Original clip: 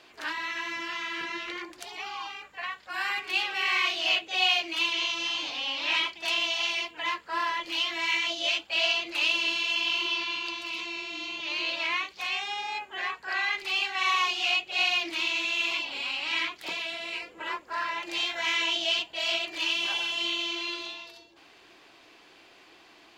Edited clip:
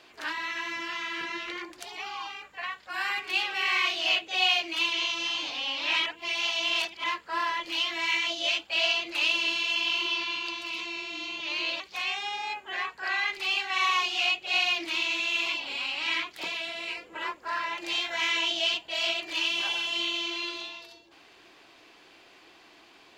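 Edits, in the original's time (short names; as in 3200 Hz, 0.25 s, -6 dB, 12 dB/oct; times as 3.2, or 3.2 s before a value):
6.06–7.04 reverse
11.8–12.05 cut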